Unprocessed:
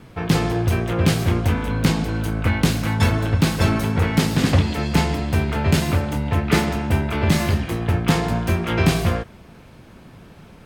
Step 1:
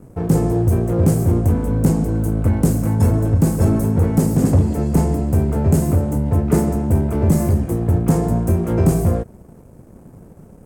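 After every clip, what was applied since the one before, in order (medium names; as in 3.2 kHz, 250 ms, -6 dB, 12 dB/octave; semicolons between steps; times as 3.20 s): FFT filter 500 Hz 0 dB, 3.6 kHz -27 dB, 7.9 kHz -1 dB; waveshaping leveller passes 1; trim +1 dB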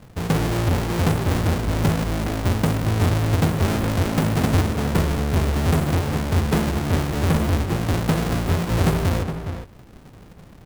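square wave that keeps the level; echo from a far wall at 71 m, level -8 dB; trim -8.5 dB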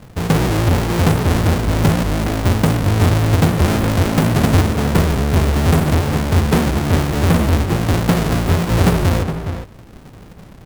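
warped record 78 rpm, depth 160 cents; trim +5.5 dB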